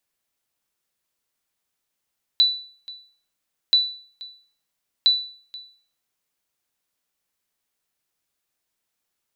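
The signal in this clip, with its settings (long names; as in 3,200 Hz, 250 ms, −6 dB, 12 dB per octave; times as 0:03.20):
ping with an echo 3,970 Hz, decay 0.47 s, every 1.33 s, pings 3, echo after 0.48 s, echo −21 dB −9.5 dBFS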